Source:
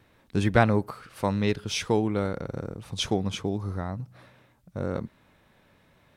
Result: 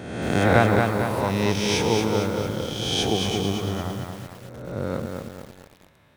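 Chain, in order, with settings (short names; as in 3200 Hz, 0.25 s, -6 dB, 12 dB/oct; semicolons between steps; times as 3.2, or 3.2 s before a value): spectral swells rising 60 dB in 1.22 s; HPF 46 Hz 24 dB/oct; lo-fi delay 0.226 s, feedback 55%, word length 7-bit, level -4 dB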